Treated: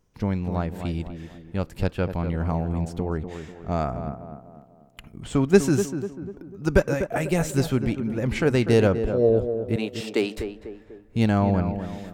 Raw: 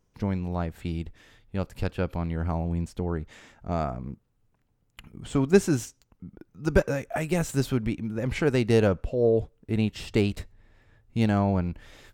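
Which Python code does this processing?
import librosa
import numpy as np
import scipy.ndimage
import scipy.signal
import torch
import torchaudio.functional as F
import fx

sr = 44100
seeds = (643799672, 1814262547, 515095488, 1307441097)

p1 = fx.highpass(x, sr, hz=270.0, slope=24, at=(9.76, 10.38))
p2 = p1 + fx.echo_tape(p1, sr, ms=247, feedback_pct=53, wet_db=-7.0, lp_hz=1200.0, drive_db=6.0, wow_cents=12, dry=0)
y = F.gain(torch.from_numpy(p2), 2.5).numpy()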